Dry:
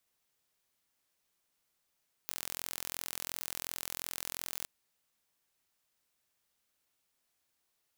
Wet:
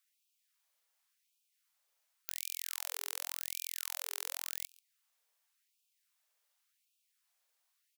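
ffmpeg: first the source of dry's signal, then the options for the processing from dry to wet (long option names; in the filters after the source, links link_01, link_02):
-f lavfi -i "aevalsrc='0.282*eq(mod(n,1030),0)':duration=2.38:sample_rate=44100"
-af "aecho=1:1:138:0.0668,afftfilt=real='re*gte(b*sr/1024,400*pow(2400/400,0.5+0.5*sin(2*PI*0.9*pts/sr)))':imag='im*gte(b*sr/1024,400*pow(2400/400,0.5+0.5*sin(2*PI*0.9*pts/sr)))':win_size=1024:overlap=0.75"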